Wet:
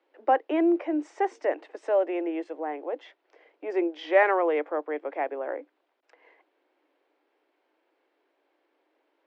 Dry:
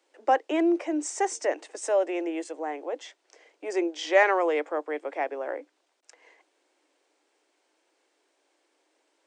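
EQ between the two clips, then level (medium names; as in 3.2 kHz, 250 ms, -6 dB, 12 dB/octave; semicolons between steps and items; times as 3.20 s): distance through air 370 m; +1.5 dB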